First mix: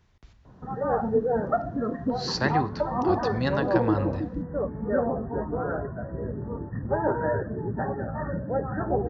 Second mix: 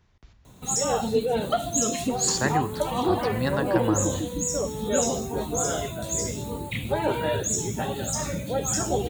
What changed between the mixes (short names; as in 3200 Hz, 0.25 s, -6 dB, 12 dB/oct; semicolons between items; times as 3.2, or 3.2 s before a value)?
first sound: remove brick-wall FIR low-pass 1900 Hz; second sound +9.5 dB